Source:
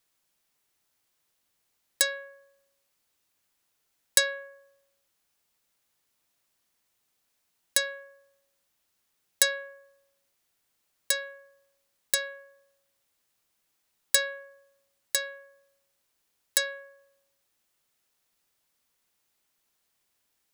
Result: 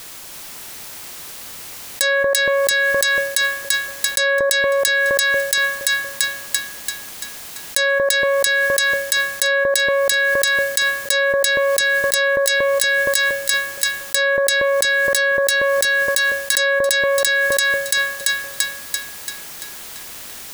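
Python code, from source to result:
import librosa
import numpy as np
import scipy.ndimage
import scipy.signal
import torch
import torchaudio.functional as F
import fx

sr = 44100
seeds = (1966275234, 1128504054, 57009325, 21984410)

p1 = x + fx.echo_split(x, sr, split_hz=1100.0, low_ms=234, high_ms=339, feedback_pct=52, wet_db=-5, dry=0)
y = fx.env_flatten(p1, sr, amount_pct=100)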